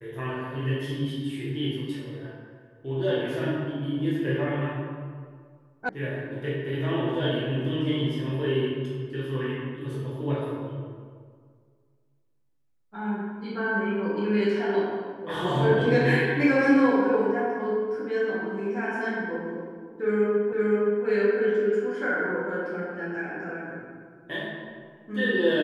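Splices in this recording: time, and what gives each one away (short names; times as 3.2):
5.89 sound cut off
20.53 repeat of the last 0.52 s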